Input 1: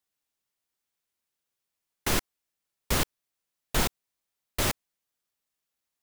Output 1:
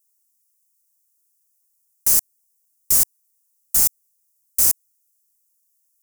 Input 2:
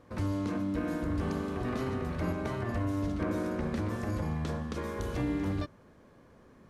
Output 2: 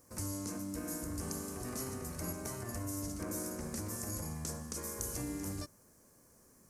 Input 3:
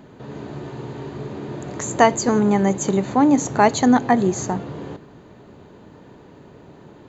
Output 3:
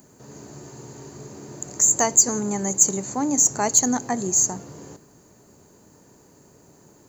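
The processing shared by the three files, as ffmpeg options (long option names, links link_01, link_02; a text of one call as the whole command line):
ffmpeg -i in.wav -af "aexciter=amount=11.2:drive=8.4:freq=5400,volume=-9dB" out.wav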